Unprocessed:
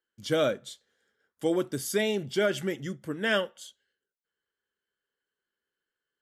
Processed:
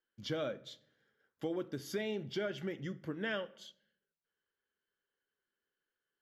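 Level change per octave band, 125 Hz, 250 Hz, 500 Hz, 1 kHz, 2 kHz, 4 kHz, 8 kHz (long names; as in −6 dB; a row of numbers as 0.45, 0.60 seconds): −7.0, −9.0, −11.0, −11.5, −11.0, −10.5, −16.0 decibels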